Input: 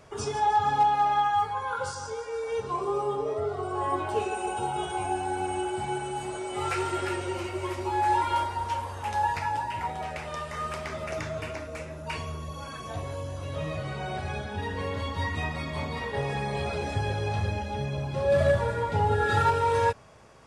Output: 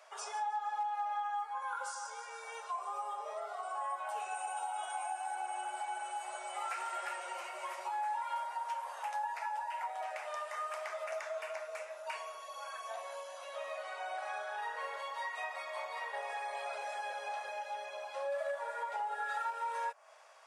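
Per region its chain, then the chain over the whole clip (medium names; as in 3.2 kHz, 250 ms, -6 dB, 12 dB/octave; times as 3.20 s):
1.62–5.35 s: high-pass 500 Hz + treble shelf 9.1 kHz +7.5 dB + band-stop 4.6 kHz, Q 27
14.18–14.96 s: peaking EQ 1.3 kHz +7.5 dB 0.23 oct + flutter echo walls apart 6.6 m, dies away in 0.37 s
whole clip: Chebyshev high-pass 610 Hz, order 4; dynamic bell 3.9 kHz, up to -7 dB, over -50 dBFS, Q 0.99; compression 4:1, threshold -33 dBFS; trim -2.5 dB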